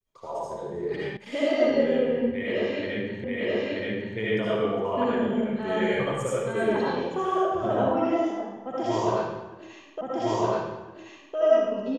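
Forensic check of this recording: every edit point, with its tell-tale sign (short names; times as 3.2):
1.17 sound cut off
3.24 repeat of the last 0.93 s
10.01 repeat of the last 1.36 s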